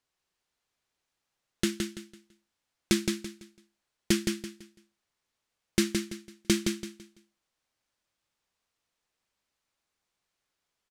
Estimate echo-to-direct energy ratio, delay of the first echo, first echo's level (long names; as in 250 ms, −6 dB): −4.5 dB, 167 ms, −5.0 dB